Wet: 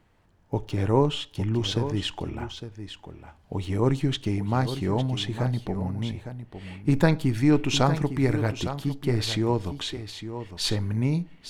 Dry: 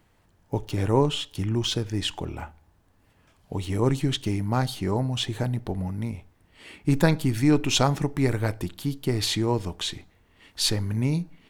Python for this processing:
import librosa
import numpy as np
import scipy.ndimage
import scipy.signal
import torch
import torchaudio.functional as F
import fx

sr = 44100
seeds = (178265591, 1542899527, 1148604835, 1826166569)

p1 = fx.lowpass(x, sr, hz=4000.0, slope=6)
y = p1 + fx.echo_single(p1, sr, ms=857, db=-10.5, dry=0)